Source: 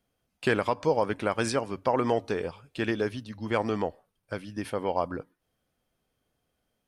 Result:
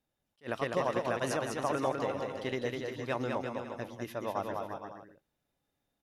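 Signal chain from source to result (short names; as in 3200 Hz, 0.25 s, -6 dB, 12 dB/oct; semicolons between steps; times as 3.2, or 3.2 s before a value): bouncing-ball echo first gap 0.23 s, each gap 0.75×, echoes 5; wide varispeed 1.14×; attack slew limiter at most 390 dB/s; gain -7 dB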